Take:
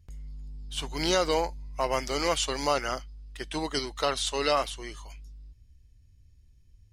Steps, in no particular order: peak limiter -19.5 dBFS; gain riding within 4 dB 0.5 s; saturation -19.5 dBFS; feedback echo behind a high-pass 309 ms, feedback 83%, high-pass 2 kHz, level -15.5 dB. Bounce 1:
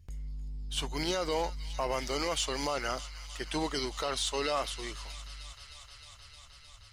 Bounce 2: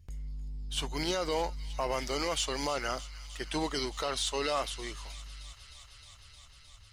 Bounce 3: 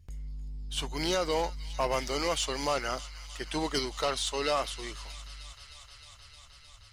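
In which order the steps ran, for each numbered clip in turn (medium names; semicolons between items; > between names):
gain riding > feedback echo behind a high-pass > peak limiter > saturation; gain riding > peak limiter > saturation > feedback echo behind a high-pass; gain riding > feedback echo behind a high-pass > saturation > peak limiter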